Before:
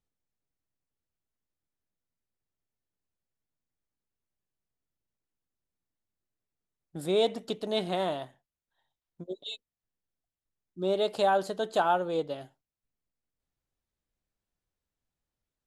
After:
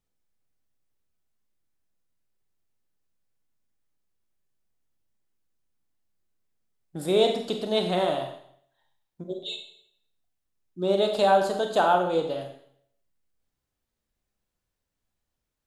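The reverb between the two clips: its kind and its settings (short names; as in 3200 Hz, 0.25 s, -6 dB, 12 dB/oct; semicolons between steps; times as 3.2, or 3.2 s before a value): Schroeder reverb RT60 0.65 s, combs from 30 ms, DRR 4 dB; gain +3.5 dB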